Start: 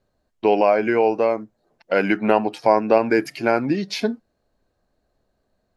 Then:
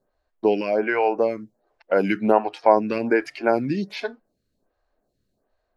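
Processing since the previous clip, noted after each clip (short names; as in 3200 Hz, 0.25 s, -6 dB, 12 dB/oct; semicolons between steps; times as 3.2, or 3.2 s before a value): dynamic EQ 1600 Hz, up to +3 dB, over -27 dBFS, Q 0.75; photocell phaser 1.3 Hz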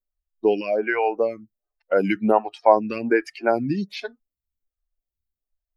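per-bin expansion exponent 1.5; gain +2 dB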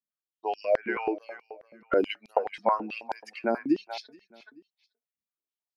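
feedback echo 0.43 s, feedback 20%, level -15 dB; stepped high-pass 9.3 Hz 210–4700 Hz; gain -8.5 dB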